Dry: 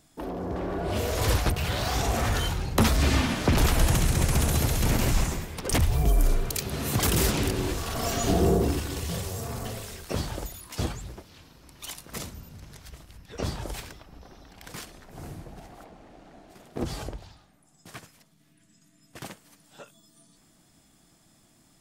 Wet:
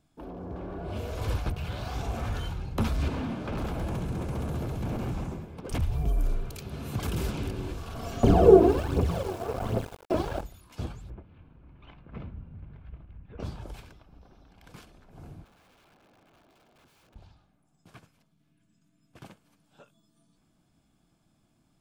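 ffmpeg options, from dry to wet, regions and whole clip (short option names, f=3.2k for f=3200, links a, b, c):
-filter_complex "[0:a]asettb=1/sr,asplit=3[a][b][c];[a]atrim=end=3.084[d];[b]atrim=start=3.08:end=5.67,asetpts=PTS-STARTPTS,afade=t=in:d=0.004:c=qsin,afade=t=out:st=2.586:d=0.004:c=qsin,highpass=f=200:p=1,tiltshelf=f=1.1k:g=7,aeval=exprs='0.1*(abs(mod(val(0)/0.1+3,4)-2)-1)':c=same[e];[c]atrim=start=5.666[f];[d][e]acrossfade=d=0.004:c1=hsin:c2=qsin[g];[g][f]acrossfade=d=0.004:c1=qsin:c2=hsin,asettb=1/sr,asplit=3[h][i][j];[h]atrim=end=8.234[k];[i]atrim=start=8.23:end=10.41,asetpts=PTS-STARTPTS,afade=t=in:d=0.004:c=qsin,afade=t=out:st=2.176:d=0.004:c=qsin,aphaser=in_gain=1:out_gain=1:delay=3.2:decay=0.73:speed=1.3:type=triangular,aeval=exprs='val(0)*gte(abs(val(0)),0.0299)':c=same,equalizer=f=510:w=0.38:g=13.5[l];[j]atrim=start=10.406[m];[k][l]acrossfade=d=0.004:c1=hsin:c2=qsin[n];[n][m]acrossfade=d=0.004:c1=qsin:c2=hsin,asettb=1/sr,asplit=3[o][p][q];[o]atrim=end=11.104[r];[p]atrim=start=11.1:end=13.4,asetpts=PTS-STARTPTS,afade=t=in:d=0.004:c=qsin,afade=t=out:st=2.296:d=0.004:c=qsin,lowpass=f=2.6k:w=0.5412,lowpass=f=2.6k:w=1.3066,lowshelf=f=300:g=7[s];[q]atrim=start=13.396[t];[r][s]acrossfade=d=0.004:c1=hsin:c2=qsin[u];[u][t]acrossfade=d=0.004:c1=qsin:c2=hsin,asettb=1/sr,asplit=3[v][w][x];[v]atrim=end=15.444[y];[w]atrim=start=15.44:end=17.16,asetpts=PTS-STARTPTS,afade=t=in:d=0.004:c=qsin,afade=t=out:st=1.716:d=0.004:c=qsin,acompressor=threshold=-40dB:ratio=6:attack=3.2:release=140:knee=1:detection=peak,highpass=240,lowpass=6.6k,aeval=exprs='(mod(211*val(0)+1,2)-1)/211':c=same[z];[x]atrim=start=17.156[aa];[y][z]acrossfade=d=0.004:c1=hsin:c2=qsin[ab];[ab][aa]acrossfade=d=0.004:c1=qsin:c2=hsin,bass=f=250:g=4,treble=f=4k:g=-9,bandreject=f=1.9k:w=6.6,volume=-8.5dB"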